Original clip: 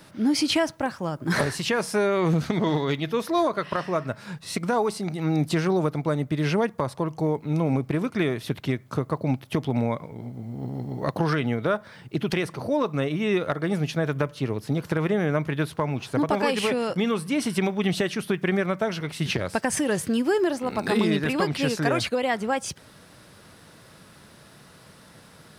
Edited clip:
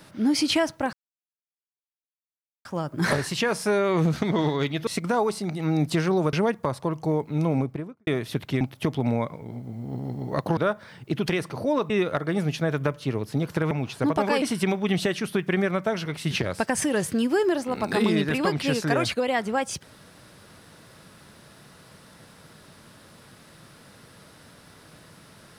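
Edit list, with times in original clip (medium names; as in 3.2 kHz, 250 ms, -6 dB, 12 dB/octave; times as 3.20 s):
0.93 s: insert silence 1.72 s
3.15–4.46 s: delete
5.92–6.48 s: delete
7.63–8.22 s: studio fade out
8.76–9.31 s: delete
11.27–11.61 s: delete
12.94–13.25 s: delete
15.06–15.84 s: delete
16.55–17.37 s: delete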